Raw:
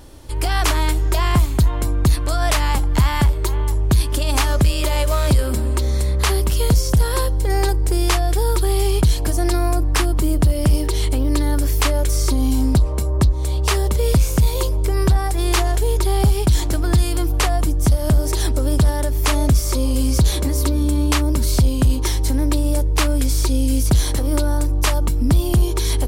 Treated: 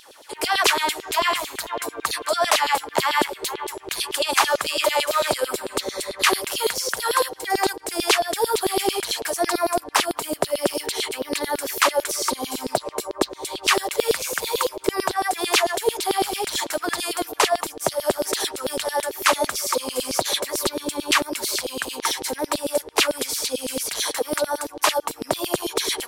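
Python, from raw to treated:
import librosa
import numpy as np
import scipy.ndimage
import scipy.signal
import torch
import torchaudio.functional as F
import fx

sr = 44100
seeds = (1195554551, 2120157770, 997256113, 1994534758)

y = fx.filter_lfo_highpass(x, sr, shape='saw_down', hz=9.0, low_hz=370.0, high_hz=4100.0, q=3.2)
y = fx.vibrato(y, sr, rate_hz=12.0, depth_cents=22.0)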